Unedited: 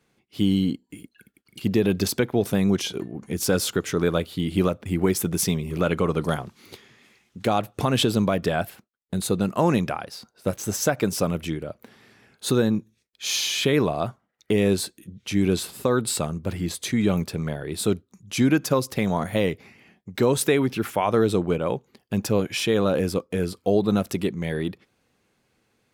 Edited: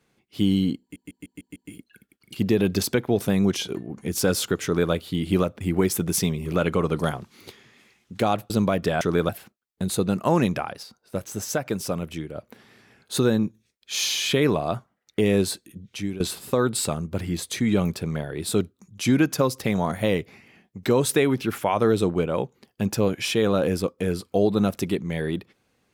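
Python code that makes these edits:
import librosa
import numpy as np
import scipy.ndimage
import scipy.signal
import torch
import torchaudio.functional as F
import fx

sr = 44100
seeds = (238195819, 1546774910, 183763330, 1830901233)

y = fx.edit(x, sr, fx.stutter(start_s=0.81, slice_s=0.15, count=6),
    fx.duplicate(start_s=3.89, length_s=0.28, to_s=8.61),
    fx.cut(start_s=7.75, length_s=0.35),
    fx.clip_gain(start_s=10.15, length_s=1.52, db=-4.0),
    fx.fade_out_to(start_s=15.15, length_s=0.37, floor_db=-18.0), tone=tone)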